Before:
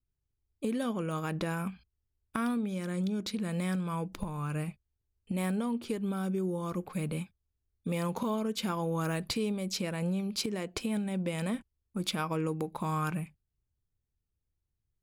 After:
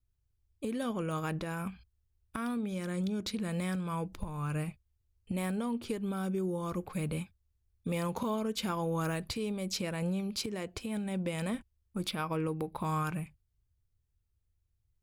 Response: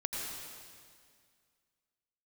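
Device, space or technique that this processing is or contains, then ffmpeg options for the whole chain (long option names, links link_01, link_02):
car stereo with a boomy subwoofer: -filter_complex "[0:a]asettb=1/sr,asplit=3[link_01][link_02][link_03];[link_01]atrim=end=12.084[link_04];[link_02]atrim=start=12.08:end=12.85,asetpts=PTS-STARTPTS,afade=type=in:duration=0.004:curve=qsin,afade=type=out:start_time=0.766:duration=0.004:curve=qsin,equalizer=frequency=6800:width_type=o:width=0.34:gain=-14[link_05];[link_03]atrim=start=12.846[link_06];[link_04][link_05]acrossfade=duration=0.004:curve1=hsin:curve2=qsin[link_07];[link_07][link_06]acrossfade=duration=0.004:curve1=qsin:curve2=hsin,lowshelf=frequency=130:width_type=q:width=1.5:gain=6,alimiter=limit=-23dB:level=0:latency=1:release=333"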